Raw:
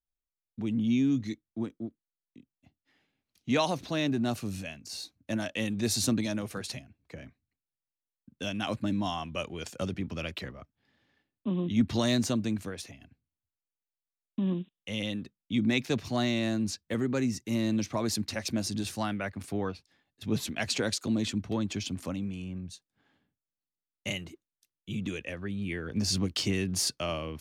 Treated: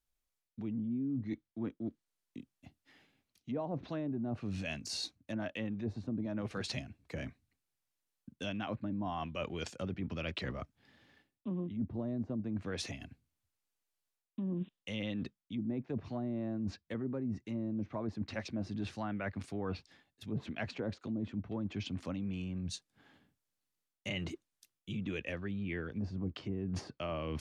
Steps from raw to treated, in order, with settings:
treble cut that deepens with the level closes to 600 Hz, closed at −24 dBFS
reversed playback
downward compressor 5 to 1, threshold −42 dBFS, peak gain reduction 19.5 dB
reversed playback
level +6 dB

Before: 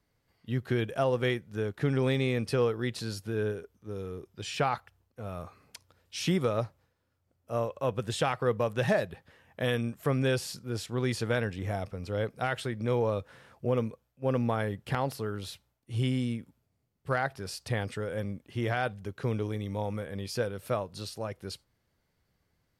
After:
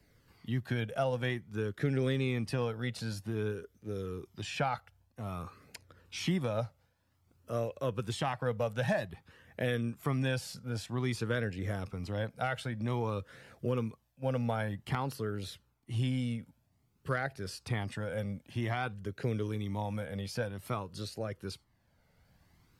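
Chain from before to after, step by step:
flanger 0.52 Hz, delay 0.4 ms, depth 1.1 ms, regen −31%
multiband upward and downward compressor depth 40%

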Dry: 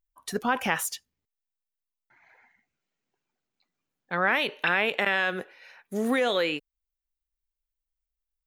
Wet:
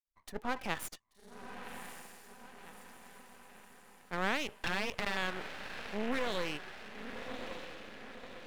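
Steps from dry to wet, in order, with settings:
adaptive Wiener filter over 9 samples
0:04.52–0:05.17: frequency shifter +20 Hz
feedback delay with all-pass diffusion 1,129 ms, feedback 55%, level −7.5 dB
half-wave rectification
level −6.5 dB

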